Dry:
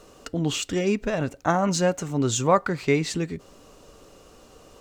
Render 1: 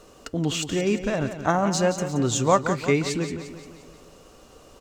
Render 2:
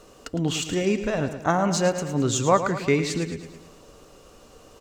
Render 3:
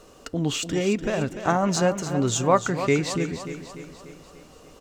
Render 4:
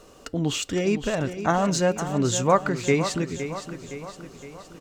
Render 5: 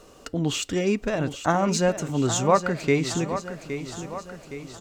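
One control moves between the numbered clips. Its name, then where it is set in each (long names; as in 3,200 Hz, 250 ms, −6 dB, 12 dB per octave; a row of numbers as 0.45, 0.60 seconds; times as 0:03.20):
repeating echo, delay time: 175, 109, 294, 514, 816 milliseconds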